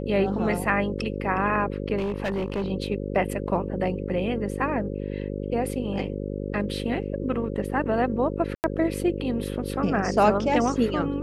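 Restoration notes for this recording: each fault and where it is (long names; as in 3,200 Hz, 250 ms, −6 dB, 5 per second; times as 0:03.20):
mains buzz 50 Hz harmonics 11 −31 dBFS
0:01.97–0:02.70: clipping −23 dBFS
0:08.55–0:08.64: drop-out 89 ms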